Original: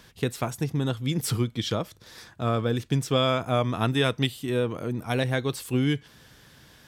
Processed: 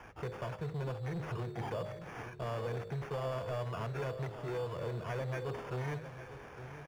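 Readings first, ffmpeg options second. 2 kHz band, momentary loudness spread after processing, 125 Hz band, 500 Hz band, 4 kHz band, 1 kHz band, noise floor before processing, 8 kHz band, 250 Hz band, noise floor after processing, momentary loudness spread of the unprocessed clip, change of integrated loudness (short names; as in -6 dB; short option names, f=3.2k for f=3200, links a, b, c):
-12.0 dB, 7 LU, -11.0 dB, -10.0 dB, -21.5 dB, -10.5 dB, -54 dBFS, -22.0 dB, -17.5 dB, -50 dBFS, 8 LU, -13.0 dB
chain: -filter_complex "[0:a]equalizer=f=300:t=o:w=0.77:g=-4,aecho=1:1:1.9:0.99,bandreject=f=51.57:t=h:w=4,bandreject=f=103.14:t=h:w=4,bandreject=f=154.71:t=h:w=4,bandreject=f=206.28:t=h:w=4,bandreject=f=257.85:t=h:w=4,bandreject=f=309.42:t=h:w=4,bandreject=f=360.99:t=h:w=4,bandreject=f=412.56:t=h:w=4,bandreject=f=464.13:t=h:w=4,bandreject=f=515.7:t=h:w=4,bandreject=f=567.27:t=h:w=4,bandreject=f=618.84:t=h:w=4,acrossover=split=150|2500[a][b][c];[a]acompressor=threshold=-37dB:ratio=4[d];[b]acompressor=threshold=-31dB:ratio=4[e];[c]acompressor=threshold=-40dB:ratio=4[f];[d][e][f]amix=inputs=3:normalize=0,acrossover=split=2700[g][h];[h]alimiter=level_in=8.5dB:limit=-24dB:level=0:latency=1:release=304,volume=-8.5dB[i];[g][i]amix=inputs=2:normalize=0,acrusher=samples=11:mix=1:aa=0.000001,asoftclip=type=tanh:threshold=-31dB,asplit=2[j][k];[k]highpass=f=720:p=1,volume=5dB,asoftclip=type=tanh:threshold=-31dB[l];[j][l]amix=inputs=2:normalize=0,lowpass=f=1k:p=1,volume=-6dB,asplit=2[m][n];[n]aecho=0:1:857|1714|2571:0.251|0.0854|0.029[o];[m][o]amix=inputs=2:normalize=0,volume=2dB"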